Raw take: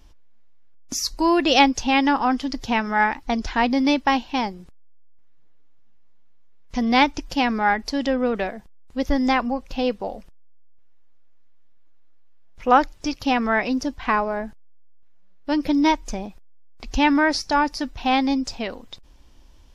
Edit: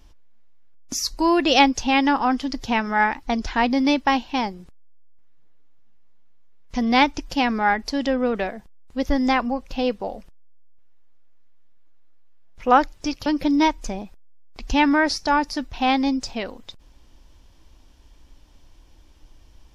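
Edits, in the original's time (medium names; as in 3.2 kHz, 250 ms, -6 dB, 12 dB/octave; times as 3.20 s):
13.26–15.50 s: delete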